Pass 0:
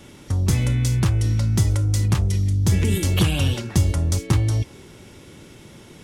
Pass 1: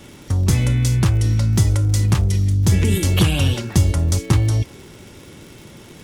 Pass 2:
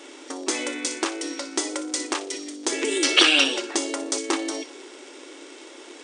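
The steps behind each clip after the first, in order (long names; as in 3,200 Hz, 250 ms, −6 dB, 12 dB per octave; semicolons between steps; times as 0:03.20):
surface crackle 110 per second −36 dBFS; level +3 dB
gain on a spectral selection 0:03.04–0:03.44, 1,200–6,100 Hz +8 dB; linear-phase brick-wall band-pass 260–9,600 Hz; delay with a high-pass on its return 60 ms, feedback 34%, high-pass 2,700 Hz, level −11.5 dB; level +1 dB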